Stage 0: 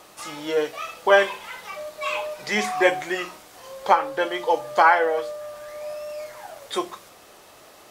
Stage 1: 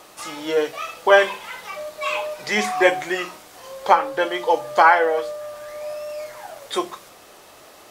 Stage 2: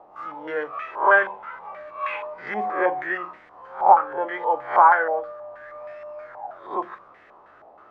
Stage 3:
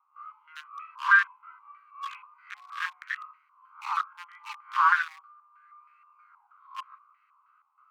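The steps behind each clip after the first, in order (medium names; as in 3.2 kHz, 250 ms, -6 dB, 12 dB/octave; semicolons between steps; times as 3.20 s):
hum notches 50/100/150/200 Hz; trim +2.5 dB
reverse spectral sustain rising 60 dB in 0.39 s; step-sequenced low-pass 6.3 Hz 810–1900 Hz; trim -9.5 dB
local Wiener filter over 25 samples; steep high-pass 1.1 kHz 72 dB/octave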